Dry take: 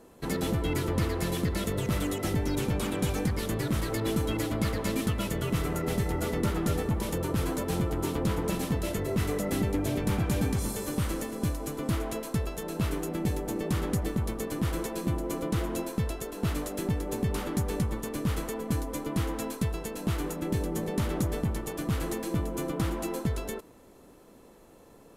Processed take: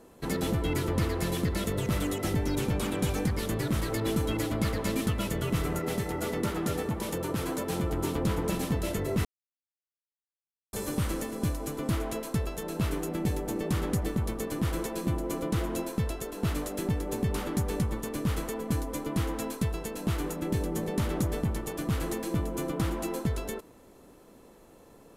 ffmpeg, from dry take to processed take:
-filter_complex "[0:a]asettb=1/sr,asplit=3[s0][s1][s2];[s0]atrim=end=5.794[s3];[s1]atrim=start=5.79:end=7.84,asetpts=PTS-STARTPTS,afade=t=in:d=0.004:c=qsin,afade=t=out:st=2.046:d=0.004:c=qsin,highpass=f=160:p=1[s4];[s2]atrim=start=7.836[s5];[s3][s4]acrossfade=d=0.004:c1=hsin:c2=qsin[s6];[s6][s5]acrossfade=d=0.004:c1=qsin:c2=hsin,asplit=3[s7][s8][s9];[s7]atrim=end=9.25,asetpts=PTS-STARTPTS,afade=t=out:st=9.246:d=0.004:c=hsin[s10];[s8]atrim=start=9.25:end=10.73,asetpts=PTS-STARTPTS,volume=0[s11];[s9]atrim=start=10.73,asetpts=PTS-STARTPTS,afade=t=in:d=0.004:c=hsin[s12];[s10][s11][s12]concat=n=3:v=0:a=1"

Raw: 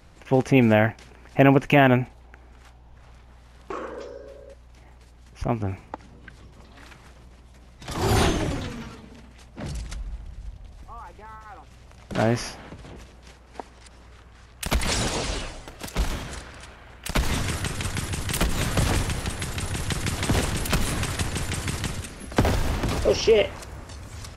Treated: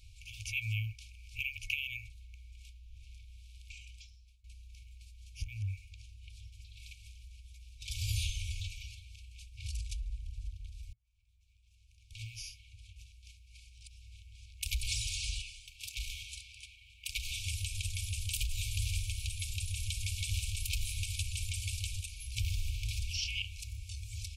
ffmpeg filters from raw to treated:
-filter_complex "[0:a]asettb=1/sr,asplit=3[s0][s1][s2];[s0]atrim=end=15.424[s3];[s1]atrim=start=15.42:end=17.47,asetpts=PTS-STARTPTS,afade=t=in:d=0.004:c=qsin,afade=t=out:st=2.046:d=0.004:c=qsin,bass=f=250:g=-12,treble=f=4000:g=-4[s4];[s2]atrim=start=17.466[s5];[s3][s4]acrossfade=d=0.004:c1=hsin:c2=qsin[s6];[s6][s5]acrossfade=d=0.004:c1=qsin:c2=hsin,asplit=3[s7][s8][s9];[s7]atrim=end=4.44,asetpts=PTS-STARTPTS,afade=t=out:st=3.91:d=0.53:silence=0.0668344[s10];[s8]atrim=start=4.44:end=10.93,asetpts=PTS-STARTPTS,afade=t=in:d=0.004:c=hsin:silence=0.0668344,afade=t=out:st=6.486:d=0.004:c=hsin[s11];[s9]atrim=start=10.93,asetpts=PTS-STARTPTS,afade=t=in:d=3.95[s12];[s10][s11][s12]concat=n=3:v=0:a=1,afftfilt=real='re*(1-between(b*sr/4096,110,2200))':imag='im*(1-between(b*sr/4096,110,2200))':win_size=4096:overlap=0.75,acompressor=threshold=0.0178:ratio=2,volume=0.841"

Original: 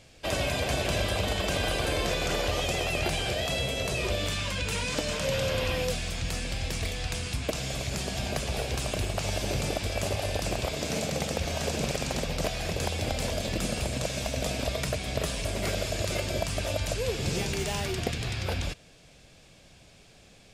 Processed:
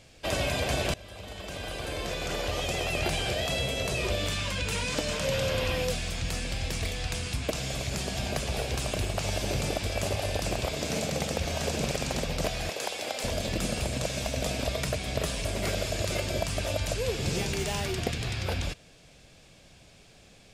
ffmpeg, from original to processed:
-filter_complex "[0:a]asettb=1/sr,asplit=3[s0][s1][s2];[s0]atrim=end=12.694[s3];[s1]atrim=start=12.69:end=13.24,asetpts=PTS-STARTPTS,afade=t=in:d=0.004:c=qsin,afade=t=out:st=0.546:d=0.004:c=qsin,highpass=440[s4];[s2]atrim=start=13.236[s5];[s3][s4]acrossfade=d=0.004:c1=hsin:c2=qsin[s6];[s6][s5]acrossfade=d=0.004:c1=qsin:c2=hsin,asplit=2[s7][s8];[s7]atrim=end=0.94,asetpts=PTS-STARTPTS,afade=t=out:st=0.936:d=0.004:c=hsin:silence=0.0794328[s9];[s8]atrim=start=0.94,asetpts=PTS-STARTPTS,afade=t=in:d=2.17:silence=0.0794328[s10];[s9][s10]concat=n=2:v=0:a=1"

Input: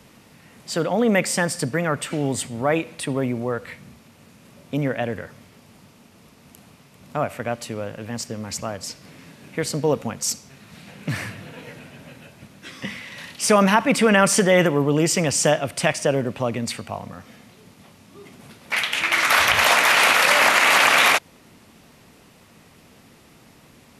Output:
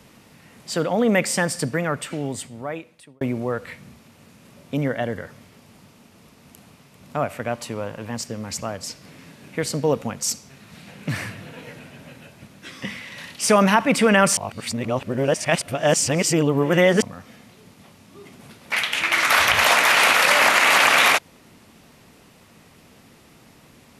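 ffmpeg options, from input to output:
-filter_complex "[0:a]asettb=1/sr,asplit=3[s0][s1][s2];[s0]atrim=end=4.844[s3];[s1]atrim=start=4.84:end=5.24,asetpts=PTS-STARTPTS,afade=t=in:d=0.004:c=qsin,afade=t=out:st=0.396:d=0.004:c=qsin,asuperstop=centerf=2500:order=4:qfactor=6.3[s4];[s2]atrim=start=5.236[s5];[s3][s4]acrossfade=d=0.004:c1=hsin:c2=qsin[s6];[s6][s5]acrossfade=d=0.004:c1=qsin:c2=hsin,asettb=1/sr,asplit=3[s7][s8][s9];[s7]atrim=end=7.534[s10];[s8]atrim=start=7.53:end=8.15,asetpts=PTS-STARTPTS,afade=t=in:d=0.004:c=qsin,afade=t=out:st=0.616:d=0.004:c=qsin,equalizer=f=980:w=3.1:g=7.5[s11];[s9]atrim=start=8.146[s12];[s10][s11]acrossfade=d=0.004:c1=hsin:c2=qsin[s13];[s13][s12]acrossfade=d=0.004:c1=qsin:c2=hsin,asplit=4[s14][s15][s16][s17];[s14]atrim=end=3.21,asetpts=PTS-STARTPTS,afade=t=out:st=1.66:d=1.55[s18];[s15]atrim=start=3.21:end=14.372,asetpts=PTS-STARTPTS,afade=t=in:d=0.004:c=hsin[s19];[s16]atrim=start=14.368:end=17.022,asetpts=PTS-STARTPTS,areverse[s20];[s17]atrim=start=17.018[s21];[s18][s19]concat=n=2:v=0:a=1[s22];[s22][s20]acrossfade=d=0.004:c1=hsin:c2=hsin[s23];[s23][s21]acrossfade=d=0.004:c1=hsin:c2=hsin"

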